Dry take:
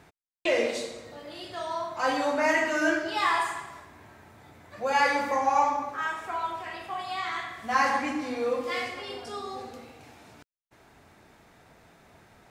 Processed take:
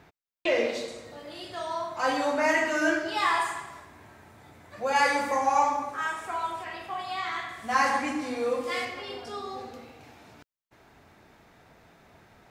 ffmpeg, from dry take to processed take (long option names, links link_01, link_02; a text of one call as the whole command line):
ffmpeg -i in.wav -af "asetnsamples=nb_out_samples=441:pad=0,asendcmd='0.88 equalizer g 1.5;4.96 equalizer g 8;6.64 equalizer g -2;7.49 equalizer g 5.5;8.85 equalizer g -5',equalizer=frequency=9000:width_type=o:width=0.84:gain=-9" out.wav